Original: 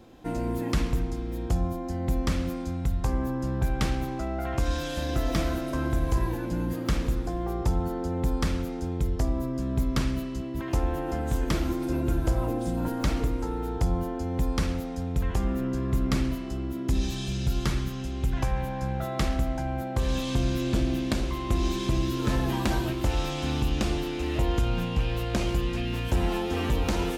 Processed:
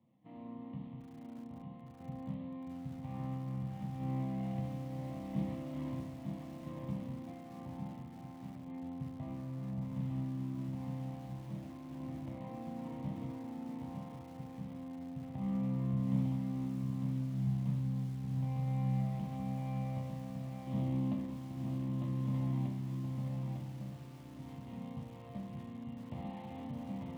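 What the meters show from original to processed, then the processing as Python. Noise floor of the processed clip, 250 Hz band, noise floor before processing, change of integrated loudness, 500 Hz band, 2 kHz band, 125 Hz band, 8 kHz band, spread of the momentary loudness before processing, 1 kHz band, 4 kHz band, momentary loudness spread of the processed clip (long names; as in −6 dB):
−50 dBFS, −9.5 dB, −33 dBFS, −11.0 dB, −18.0 dB, −22.0 dB, −8.5 dB, below −20 dB, 4 LU, −15.0 dB, below −20 dB, 13 LU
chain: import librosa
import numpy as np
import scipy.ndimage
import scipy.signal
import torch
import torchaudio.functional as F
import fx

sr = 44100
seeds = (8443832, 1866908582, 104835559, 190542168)

y = scipy.signal.medfilt(x, 41)
y = fx.low_shelf(y, sr, hz=310.0, db=-3.5)
y = fx.fixed_phaser(y, sr, hz=1500.0, stages=6)
y = fx.tremolo_random(y, sr, seeds[0], hz=1.5, depth_pct=70)
y = fx.cabinet(y, sr, low_hz=110.0, low_slope=24, high_hz=3700.0, hz=(140.0, 220.0, 380.0, 760.0, 1500.0, 2500.0), db=(9, 6, 5, -6, -7, -8))
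y = fx.hum_notches(y, sr, base_hz=60, count=9)
y = fx.resonator_bank(y, sr, root=36, chord='minor', decay_s=0.45)
y = y + 10.0 ** (-4.5 / 20.0) * np.pad(y, (int(902 * sr / 1000.0), 0))[:len(y)]
y = fx.echo_crushed(y, sr, ms=620, feedback_pct=55, bits=9, wet_db=-14.5)
y = y * librosa.db_to_amplitude(6.5)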